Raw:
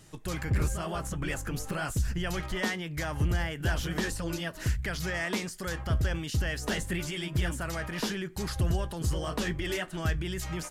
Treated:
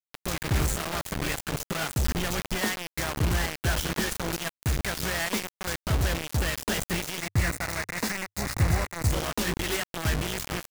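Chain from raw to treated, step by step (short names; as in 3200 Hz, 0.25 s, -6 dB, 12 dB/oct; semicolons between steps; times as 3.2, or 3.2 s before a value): bit-crush 5-bit; 7.18–9.11 thirty-one-band EQ 100 Hz +8 dB, 400 Hz -5 dB, 2000 Hz +8 dB, 3150 Hz -11 dB, 12500 Hz -3 dB; gain +1.5 dB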